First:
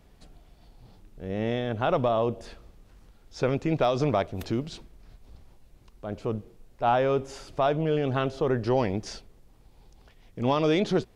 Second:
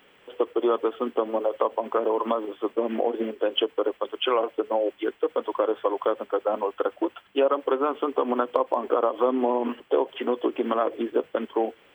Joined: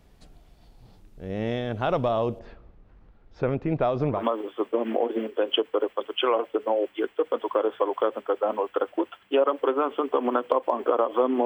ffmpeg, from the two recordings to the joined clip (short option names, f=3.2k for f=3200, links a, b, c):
-filter_complex "[0:a]asettb=1/sr,asplit=3[a][b][c];[a]atrim=end=2.394[d];[b]atrim=start=2.39:end=4.26,asetpts=PTS-STARTPTS,afade=t=in:d=0.004:c=qsin,afade=t=out:st=1.866:d=0.004:c=qsin,lowpass=2k[e];[c]atrim=start=4.256[f];[d][e]acrossfade=d=0.004:c1=hsin:c2=qsin[g];[g][f]acrossfade=d=0.004:c1=qsin:c2=hsin,apad=whole_dur=11.45,atrim=end=11.45,atrim=end=4.26,asetpts=PTS-STARTPTS[h];[1:a]atrim=start=2.14:end=9.49,asetpts=PTS-STARTPTS[i];[h][i]acrossfade=d=0.16:c1=tri:c2=tri"